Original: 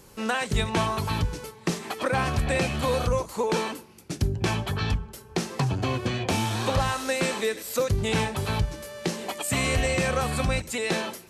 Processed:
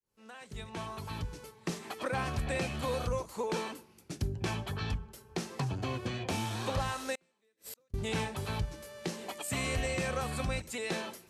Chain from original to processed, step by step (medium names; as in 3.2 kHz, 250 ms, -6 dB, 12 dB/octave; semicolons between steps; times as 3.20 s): fade-in on the opening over 1.78 s; 7.15–7.94 s: inverted gate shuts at -22 dBFS, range -39 dB; trim -8.5 dB